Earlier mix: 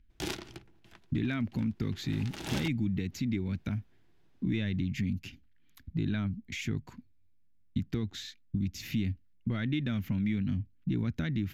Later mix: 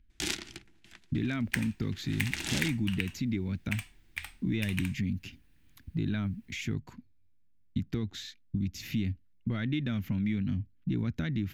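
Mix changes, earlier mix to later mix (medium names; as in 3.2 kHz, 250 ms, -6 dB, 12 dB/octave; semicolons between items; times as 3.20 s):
first sound: add graphic EQ 125/250/500/1000/2000/4000/8000 Hz -5/+3/-7/-4/+6/+3/+9 dB; second sound: unmuted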